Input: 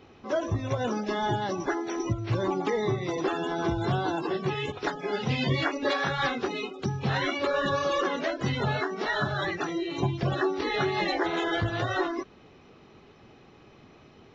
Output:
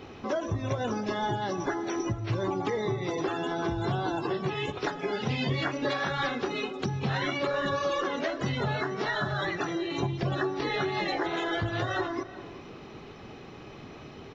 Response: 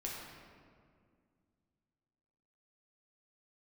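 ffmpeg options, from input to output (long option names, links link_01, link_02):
-filter_complex "[0:a]acompressor=threshold=-40dB:ratio=2.5,asplit=2[link_01][link_02];[link_02]adelay=379,volume=-16dB,highshelf=frequency=4000:gain=-8.53[link_03];[link_01][link_03]amix=inputs=2:normalize=0,asplit=2[link_04][link_05];[1:a]atrim=start_sample=2205[link_06];[link_05][link_06]afir=irnorm=-1:irlink=0,volume=-14dB[link_07];[link_04][link_07]amix=inputs=2:normalize=0,volume=7dB"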